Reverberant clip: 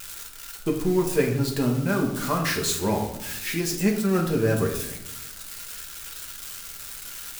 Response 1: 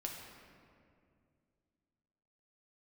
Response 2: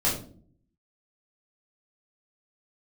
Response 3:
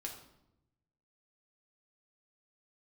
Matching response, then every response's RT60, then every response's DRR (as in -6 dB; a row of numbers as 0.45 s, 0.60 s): 3; 2.3 s, 0.50 s, 0.85 s; -0.5 dB, -7.0 dB, 0.0 dB